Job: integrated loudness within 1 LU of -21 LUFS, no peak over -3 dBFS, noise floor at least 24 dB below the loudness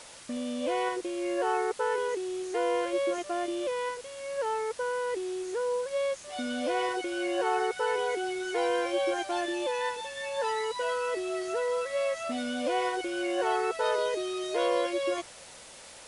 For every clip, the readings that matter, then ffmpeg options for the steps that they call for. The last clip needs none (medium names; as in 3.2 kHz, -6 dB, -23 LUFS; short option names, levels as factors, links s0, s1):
noise floor -49 dBFS; noise floor target -55 dBFS; loudness -30.5 LUFS; peak level -15.0 dBFS; loudness target -21.0 LUFS
-> -af "afftdn=nr=6:nf=-49"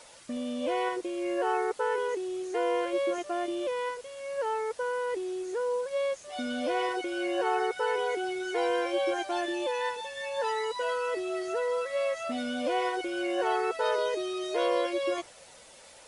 noise floor -53 dBFS; noise floor target -55 dBFS
-> -af "afftdn=nr=6:nf=-53"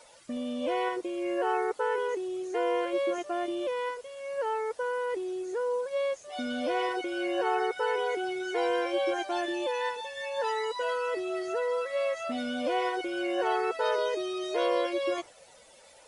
noise floor -56 dBFS; loudness -31.0 LUFS; peak level -15.0 dBFS; loudness target -21.0 LUFS
-> -af "volume=3.16"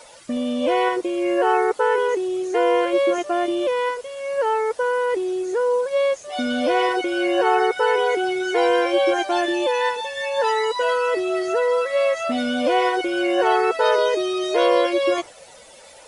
loudness -21.0 LUFS; peak level -5.0 dBFS; noise floor -46 dBFS